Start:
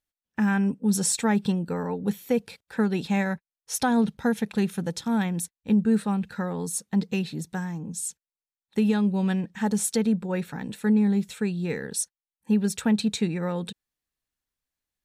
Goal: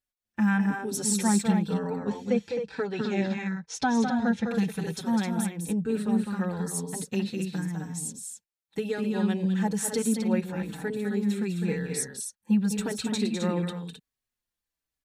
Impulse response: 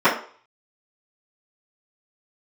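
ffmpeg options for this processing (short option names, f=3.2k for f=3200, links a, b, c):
-filter_complex "[0:a]asettb=1/sr,asplit=3[a][b][c];[a]atrim=end=1.704[d];[b]atrim=start=1.7:end=4.48,asetpts=PTS-STARTPTS,afade=t=in:d=0.004:c=qsin,afade=t=out:st=2.776:d=0.004:c=qsin,lowpass=f=6.9k:w=0.5412,lowpass=f=6.9k:w=1.3066[e];[c]atrim=start=4.476[f];[d][e]acrossfade=d=0.004:c1=hsin:c2=qsin[g];[g][f]acrossfade=d=0.004:c1=qsin:c2=hsin,aecho=1:1:204.1|262.4:0.501|0.447,asplit=2[h][i];[i]adelay=4.9,afreqshift=-0.99[j];[h][j]amix=inputs=2:normalize=1"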